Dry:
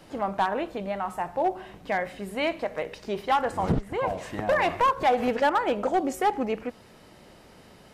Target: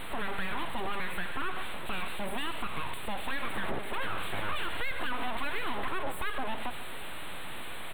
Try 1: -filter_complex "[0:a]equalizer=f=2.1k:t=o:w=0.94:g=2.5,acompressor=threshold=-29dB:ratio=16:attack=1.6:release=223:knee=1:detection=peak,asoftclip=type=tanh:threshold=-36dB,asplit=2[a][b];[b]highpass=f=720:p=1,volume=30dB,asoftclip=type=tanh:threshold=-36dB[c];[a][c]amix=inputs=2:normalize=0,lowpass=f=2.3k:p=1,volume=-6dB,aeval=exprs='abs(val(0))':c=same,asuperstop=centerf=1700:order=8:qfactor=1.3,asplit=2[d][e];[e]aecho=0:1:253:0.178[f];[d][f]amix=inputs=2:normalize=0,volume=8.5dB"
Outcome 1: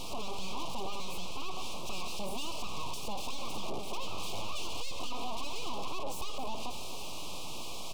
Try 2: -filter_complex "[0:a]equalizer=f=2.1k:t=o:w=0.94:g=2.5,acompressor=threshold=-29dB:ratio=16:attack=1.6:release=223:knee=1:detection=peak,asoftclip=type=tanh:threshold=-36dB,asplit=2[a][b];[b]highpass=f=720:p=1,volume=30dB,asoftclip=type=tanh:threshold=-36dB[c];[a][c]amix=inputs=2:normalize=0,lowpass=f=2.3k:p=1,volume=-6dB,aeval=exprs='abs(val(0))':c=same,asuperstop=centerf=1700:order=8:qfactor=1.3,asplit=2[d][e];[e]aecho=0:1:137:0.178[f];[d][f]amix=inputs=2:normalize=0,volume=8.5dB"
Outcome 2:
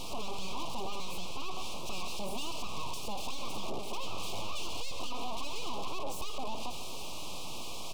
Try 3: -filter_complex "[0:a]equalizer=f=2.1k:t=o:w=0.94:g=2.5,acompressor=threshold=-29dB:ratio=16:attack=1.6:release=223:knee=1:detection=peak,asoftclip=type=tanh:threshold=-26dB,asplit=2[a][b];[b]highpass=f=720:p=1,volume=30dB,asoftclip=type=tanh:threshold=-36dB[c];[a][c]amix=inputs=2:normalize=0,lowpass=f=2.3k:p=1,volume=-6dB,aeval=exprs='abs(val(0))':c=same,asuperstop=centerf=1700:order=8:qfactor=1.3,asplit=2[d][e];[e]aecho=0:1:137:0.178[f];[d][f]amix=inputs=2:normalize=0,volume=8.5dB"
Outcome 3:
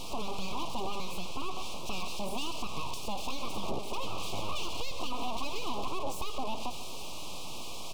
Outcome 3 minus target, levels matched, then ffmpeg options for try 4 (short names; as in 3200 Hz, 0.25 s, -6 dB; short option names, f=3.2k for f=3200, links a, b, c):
2000 Hz band -8.0 dB
-filter_complex "[0:a]equalizer=f=2.1k:t=o:w=0.94:g=2.5,acompressor=threshold=-29dB:ratio=16:attack=1.6:release=223:knee=1:detection=peak,asoftclip=type=tanh:threshold=-26dB,asplit=2[a][b];[b]highpass=f=720:p=1,volume=30dB,asoftclip=type=tanh:threshold=-36dB[c];[a][c]amix=inputs=2:normalize=0,lowpass=f=2.3k:p=1,volume=-6dB,aeval=exprs='abs(val(0))':c=same,asuperstop=centerf=5700:order=8:qfactor=1.3,asplit=2[d][e];[e]aecho=0:1:137:0.178[f];[d][f]amix=inputs=2:normalize=0,volume=8.5dB"